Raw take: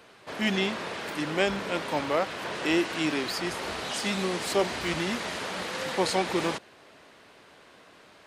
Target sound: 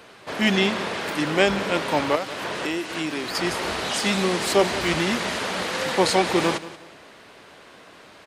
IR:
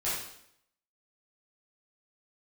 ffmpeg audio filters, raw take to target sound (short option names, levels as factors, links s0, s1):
-filter_complex "[0:a]asettb=1/sr,asplit=3[s0][s1][s2];[s0]atrim=end=2.154[s3];[s1]atrim=start=2.15:end=3.35,asetpts=PTS-STARTPTS,afade=t=in:d=0.004:c=qsin,afade=t=out:st=1.196:d=0.004:c=qsin,acrossover=split=2800|7800[s4][s5][s6];[s4]acompressor=threshold=0.0224:ratio=4[s7];[s5]acompressor=threshold=0.00631:ratio=4[s8];[s6]acompressor=threshold=0.002:ratio=4[s9];[s7][s8][s9]amix=inputs=3:normalize=0[s10];[s2]atrim=start=3.346[s11];[s3][s10]acrossfade=d=0.004:c1=hsin:c2=qsin[s12];[s12][s11]acrossfade=d=0.004:c1=qsin:c2=hsin,aecho=1:1:181|362|543:0.158|0.0475|0.0143,volume=2.11"